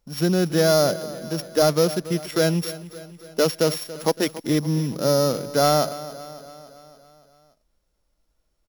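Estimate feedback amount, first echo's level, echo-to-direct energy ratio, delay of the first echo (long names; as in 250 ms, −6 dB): 58%, −16.0 dB, −14.0 dB, 282 ms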